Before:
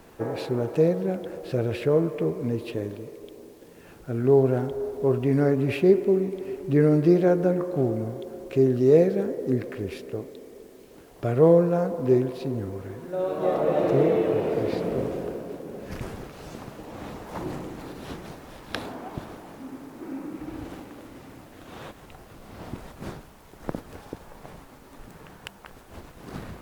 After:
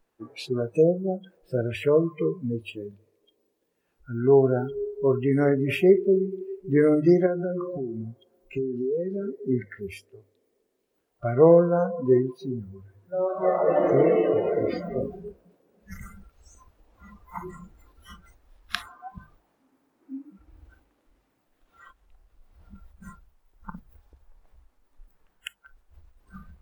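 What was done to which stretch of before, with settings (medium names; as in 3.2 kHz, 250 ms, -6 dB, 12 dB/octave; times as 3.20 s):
0.82–1.21 s: time-frequency box 1.5–6.1 kHz -22 dB
7.26–9.37 s: compression 12:1, threshold -23 dBFS
whole clip: spectral noise reduction 28 dB; bass shelf 420 Hz -6.5 dB; hum notches 50/100/150 Hz; trim +4.5 dB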